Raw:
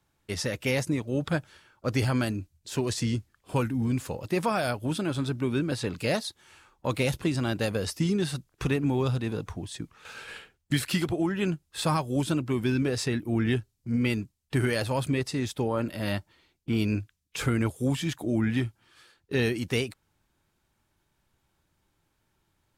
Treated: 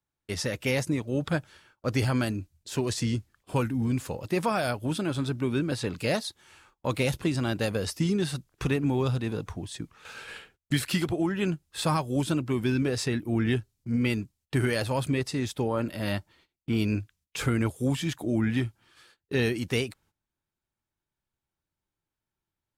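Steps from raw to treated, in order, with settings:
noise gate −59 dBFS, range −16 dB

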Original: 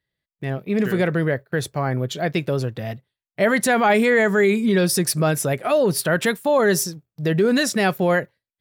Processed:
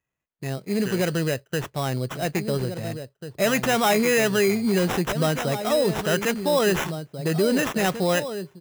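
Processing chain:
slap from a distant wall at 290 metres, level −9 dB
sample-rate reduction 4,500 Hz, jitter 0%
level −3.5 dB

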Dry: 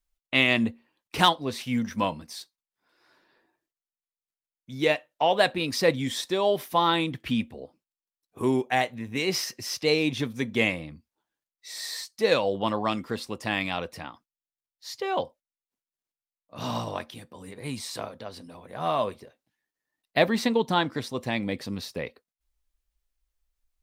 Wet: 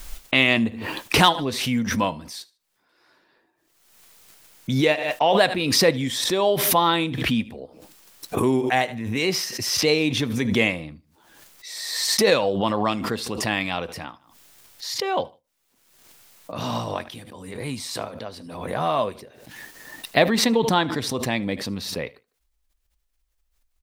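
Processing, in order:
repeating echo 76 ms, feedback 29%, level −22.5 dB
background raised ahead of every attack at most 43 dB per second
level +3 dB

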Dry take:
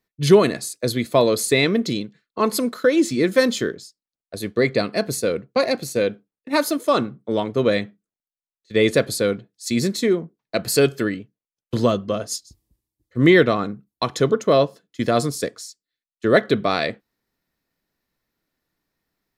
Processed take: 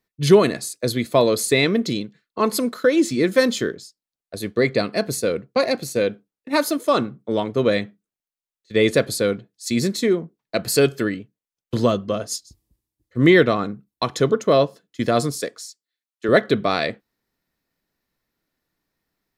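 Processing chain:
0:15.40–0:16.29: high-pass filter 360 Hz 6 dB per octave

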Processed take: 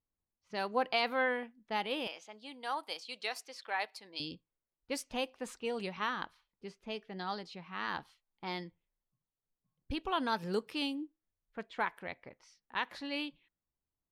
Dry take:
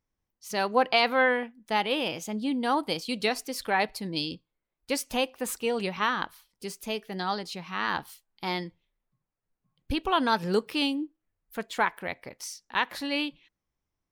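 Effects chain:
low-pass that shuts in the quiet parts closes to 1,300 Hz, open at −24 dBFS
0:02.07–0:04.20: high-pass filter 660 Hz 12 dB per octave
level −8.5 dB

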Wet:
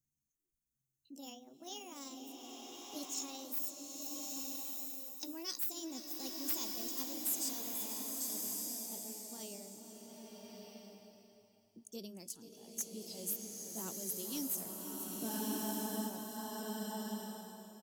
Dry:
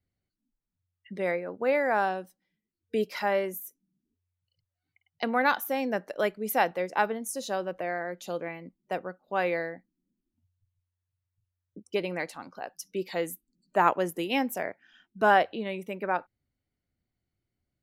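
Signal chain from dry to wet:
pitch glide at a constant tempo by +6.5 semitones ending unshifted
drawn EQ curve 240 Hz 0 dB, 690 Hz −19 dB, 2,200 Hz −29 dB, 6,500 Hz +14 dB
single-tap delay 487 ms −12 dB
dynamic equaliser 3,200 Hz, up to +8 dB, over −53 dBFS, Q 0.91
soft clipping −23 dBFS, distortion −9 dB
frozen spectrum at 0:15.30, 0.78 s
slow-attack reverb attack 1,250 ms, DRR −0.5 dB
level −7.5 dB

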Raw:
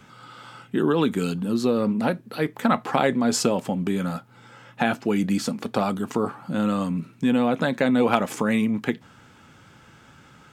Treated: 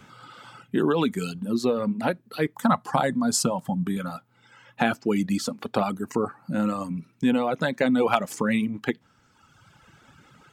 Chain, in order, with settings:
0:05.92–0:06.91: parametric band 3,300 Hz −13 dB 0.28 octaves
reverb reduction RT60 1.6 s
0:02.55–0:03.97: graphic EQ with 15 bands 160 Hz +5 dB, 400 Hz −9 dB, 1,000 Hz +3 dB, 2,500 Hz −10 dB, 10,000 Hz +6 dB

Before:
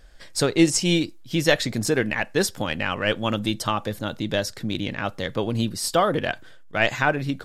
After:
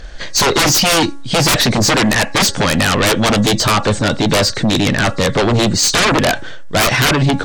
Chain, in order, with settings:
hearing-aid frequency compression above 3,700 Hz 1.5 to 1
sine wavefolder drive 19 dB, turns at −5 dBFS
hum removal 279.2 Hz, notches 7
level −4 dB

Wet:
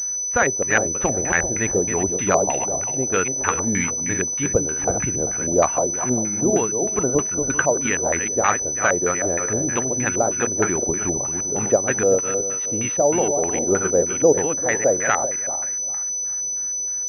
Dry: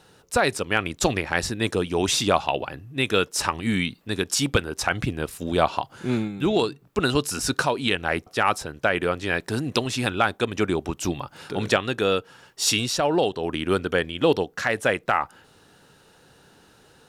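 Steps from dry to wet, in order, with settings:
feedback delay that plays each chunk backwards 197 ms, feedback 45%, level −6 dB
auto-filter low-pass square 3.2 Hz 590–2,000 Hz
switching amplifier with a slow clock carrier 6,000 Hz
level −1 dB

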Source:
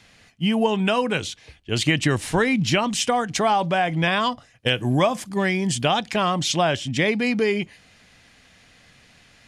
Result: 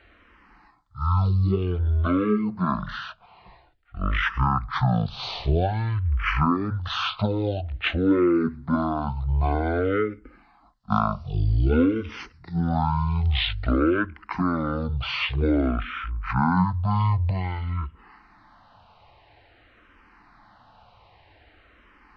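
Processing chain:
wrong playback speed 78 rpm record played at 33 rpm
dynamic equaliser 650 Hz, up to −3 dB, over −31 dBFS, Q 0.95
frequency shifter mixed with the dry sound −0.51 Hz
level +1.5 dB

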